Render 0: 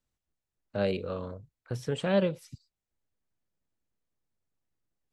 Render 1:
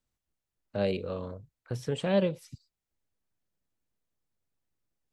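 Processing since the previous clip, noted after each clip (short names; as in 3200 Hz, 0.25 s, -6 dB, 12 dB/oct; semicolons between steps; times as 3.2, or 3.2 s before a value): dynamic EQ 1400 Hz, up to -6 dB, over -52 dBFS, Q 3.1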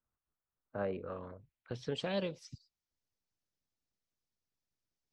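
harmonic-percussive split harmonic -7 dB; low-pass sweep 1300 Hz -> 5600 Hz, 0.94–2.08; gain -4 dB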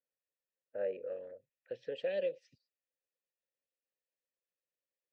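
vowel filter e; gain +7.5 dB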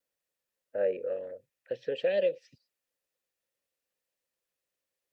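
wow and flutter 29 cents; gain +7.5 dB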